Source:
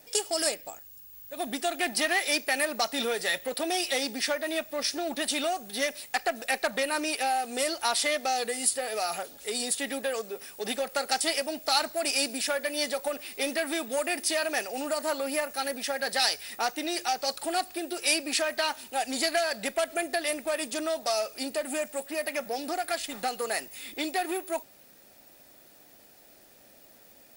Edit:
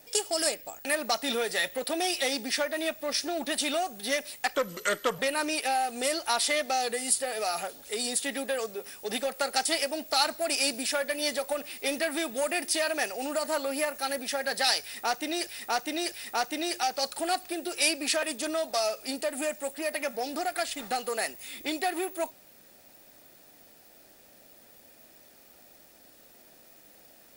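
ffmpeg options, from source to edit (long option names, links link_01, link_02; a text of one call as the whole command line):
ffmpeg -i in.wav -filter_complex "[0:a]asplit=7[link_01][link_02][link_03][link_04][link_05][link_06][link_07];[link_01]atrim=end=0.852[link_08];[link_02]atrim=start=2.548:end=6.254[link_09];[link_03]atrim=start=6.25:end=6.74,asetpts=PTS-STARTPTS,asetrate=33957,aresample=44100[link_10];[link_04]atrim=start=6.736:end=17.022[link_11];[link_05]atrim=start=16.368:end=17.022[link_12];[link_06]atrim=start=16.368:end=18.482[link_13];[link_07]atrim=start=20.548[link_14];[link_08][link_09]acrossfade=duration=0.004:curve1=hsin:curve2=hsin[link_15];[link_15][link_10]acrossfade=duration=0.004:curve1=hsin:curve2=hsin[link_16];[link_16][link_11]acrossfade=duration=0.004:curve1=hsin:curve2=hsin[link_17];[link_17][link_12]acrossfade=duration=0.004:curve1=hsin:curve2=hsin[link_18];[link_18][link_13]acrossfade=duration=0.004:curve1=hsin:curve2=hsin[link_19];[link_19][link_14]acrossfade=duration=0.004:curve1=hsin:curve2=hsin" out.wav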